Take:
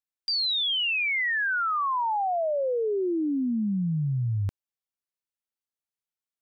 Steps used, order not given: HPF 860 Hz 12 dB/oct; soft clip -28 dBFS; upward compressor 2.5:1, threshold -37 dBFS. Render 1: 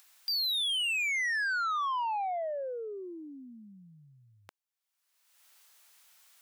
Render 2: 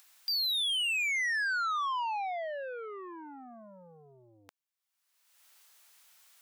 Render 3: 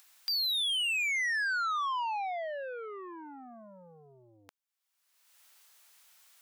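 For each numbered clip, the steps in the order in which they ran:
upward compressor > HPF > soft clip; upward compressor > soft clip > HPF; soft clip > upward compressor > HPF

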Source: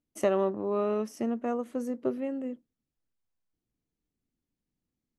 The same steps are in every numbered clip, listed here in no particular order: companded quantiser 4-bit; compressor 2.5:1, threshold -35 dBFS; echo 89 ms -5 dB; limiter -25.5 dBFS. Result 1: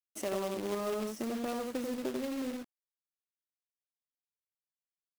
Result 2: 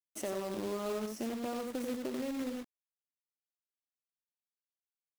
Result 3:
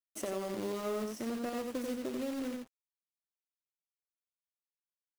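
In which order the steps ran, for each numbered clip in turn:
echo > compressor > limiter > companded quantiser; limiter > echo > companded quantiser > compressor; companded quantiser > limiter > echo > compressor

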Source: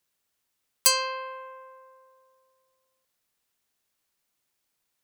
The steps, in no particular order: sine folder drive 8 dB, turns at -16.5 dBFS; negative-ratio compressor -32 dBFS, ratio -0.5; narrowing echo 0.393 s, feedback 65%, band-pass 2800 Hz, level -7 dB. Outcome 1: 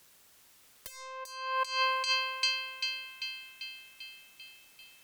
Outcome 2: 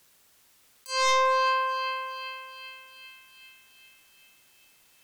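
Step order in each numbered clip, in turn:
narrowing echo > sine folder > negative-ratio compressor; negative-ratio compressor > narrowing echo > sine folder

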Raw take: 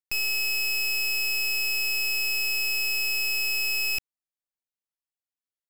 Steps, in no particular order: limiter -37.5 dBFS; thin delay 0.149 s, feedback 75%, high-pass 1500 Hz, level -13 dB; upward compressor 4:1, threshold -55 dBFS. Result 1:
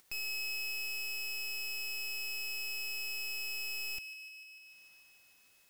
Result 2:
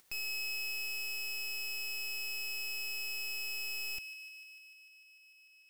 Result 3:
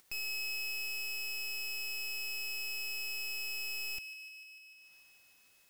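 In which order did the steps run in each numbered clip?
limiter > upward compressor > thin delay; limiter > thin delay > upward compressor; upward compressor > limiter > thin delay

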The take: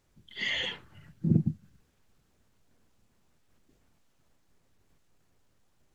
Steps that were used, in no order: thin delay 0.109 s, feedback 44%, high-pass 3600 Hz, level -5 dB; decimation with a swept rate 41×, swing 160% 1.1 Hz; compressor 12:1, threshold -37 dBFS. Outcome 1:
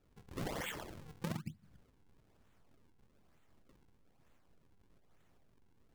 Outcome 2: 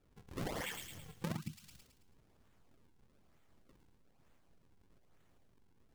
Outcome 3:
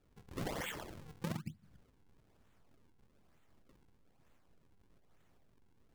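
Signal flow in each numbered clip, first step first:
thin delay > decimation with a swept rate > compressor; decimation with a swept rate > thin delay > compressor; thin delay > compressor > decimation with a swept rate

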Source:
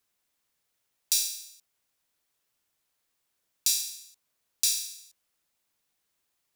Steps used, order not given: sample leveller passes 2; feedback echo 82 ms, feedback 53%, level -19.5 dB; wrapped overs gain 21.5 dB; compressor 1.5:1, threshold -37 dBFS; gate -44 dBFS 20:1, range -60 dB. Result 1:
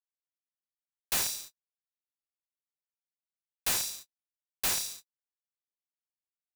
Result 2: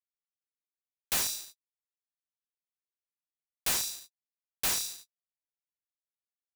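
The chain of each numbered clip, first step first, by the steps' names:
sample leveller > compressor > wrapped overs > feedback echo > gate; feedback echo > sample leveller > gate > compressor > wrapped overs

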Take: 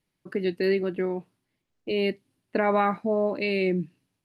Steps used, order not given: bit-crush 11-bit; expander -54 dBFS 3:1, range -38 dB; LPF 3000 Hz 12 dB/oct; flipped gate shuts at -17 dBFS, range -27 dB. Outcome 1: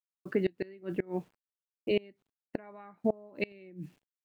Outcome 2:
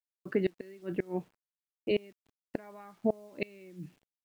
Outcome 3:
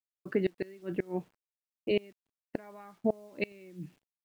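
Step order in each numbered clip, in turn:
LPF > bit-crush > flipped gate > expander; expander > flipped gate > LPF > bit-crush; LPF > flipped gate > bit-crush > expander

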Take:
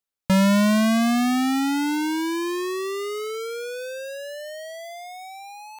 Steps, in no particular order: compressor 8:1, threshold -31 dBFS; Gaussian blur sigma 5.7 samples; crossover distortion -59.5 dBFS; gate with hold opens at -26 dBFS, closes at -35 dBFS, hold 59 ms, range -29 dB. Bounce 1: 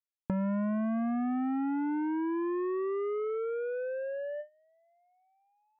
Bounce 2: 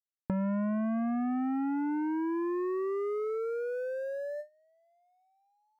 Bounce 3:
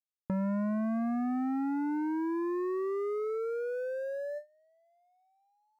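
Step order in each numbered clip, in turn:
crossover distortion > Gaussian blur > gate with hold > compressor; Gaussian blur > crossover distortion > gate with hold > compressor; compressor > Gaussian blur > crossover distortion > gate with hold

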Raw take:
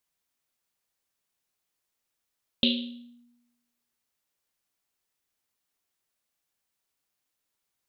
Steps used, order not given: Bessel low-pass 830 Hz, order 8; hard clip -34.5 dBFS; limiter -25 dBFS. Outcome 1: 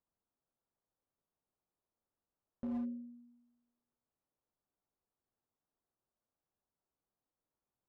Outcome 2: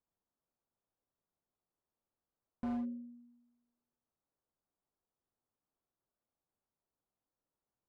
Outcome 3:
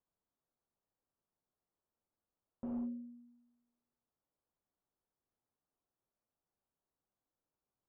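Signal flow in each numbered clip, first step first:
limiter > Bessel low-pass > hard clip; Bessel low-pass > limiter > hard clip; limiter > hard clip > Bessel low-pass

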